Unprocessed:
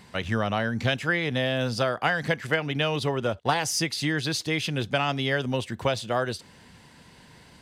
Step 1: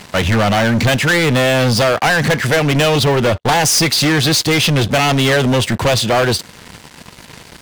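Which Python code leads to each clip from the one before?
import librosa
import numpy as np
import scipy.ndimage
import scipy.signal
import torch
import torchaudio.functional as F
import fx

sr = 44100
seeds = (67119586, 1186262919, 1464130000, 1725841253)

y = fx.leveller(x, sr, passes=5)
y = F.gain(torch.from_numpy(y), 2.0).numpy()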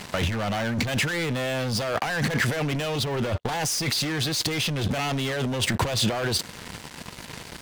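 y = fx.over_compress(x, sr, threshold_db=-19.0, ratio=-1.0)
y = F.gain(torch.from_numpy(y), -7.0).numpy()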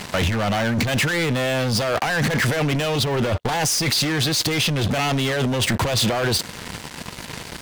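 y = np.clip(10.0 ** (22.0 / 20.0) * x, -1.0, 1.0) / 10.0 ** (22.0 / 20.0)
y = F.gain(torch.from_numpy(y), 5.5).numpy()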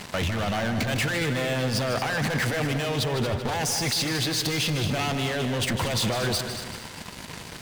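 y = fx.echo_heads(x, sr, ms=77, heads='second and third', feedback_pct=45, wet_db=-10)
y = F.gain(torch.from_numpy(y), -6.0).numpy()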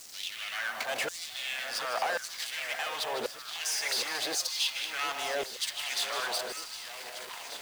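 y = fx.filter_lfo_highpass(x, sr, shape='saw_down', hz=0.92, low_hz=480.0, high_hz=6900.0, q=1.9)
y = fx.echo_alternate(y, sr, ms=768, hz=980.0, feedback_pct=64, wet_db=-9.0)
y = fx.quant_dither(y, sr, seeds[0], bits=8, dither='triangular')
y = F.gain(torch.from_numpy(y), -5.5).numpy()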